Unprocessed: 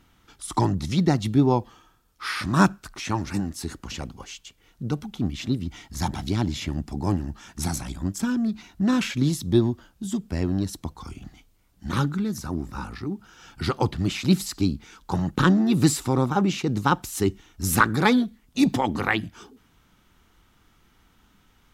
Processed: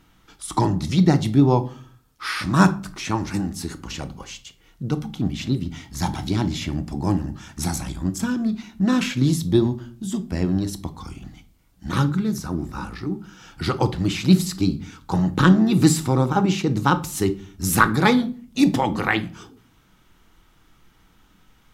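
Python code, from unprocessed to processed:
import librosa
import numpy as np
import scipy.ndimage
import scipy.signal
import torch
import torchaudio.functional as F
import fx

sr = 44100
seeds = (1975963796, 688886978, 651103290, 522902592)

y = fx.room_shoebox(x, sr, seeds[0], volume_m3=350.0, walls='furnished', distance_m=0.61)
y = F.gain(torch.from_numpy(y), 2.0).numpy()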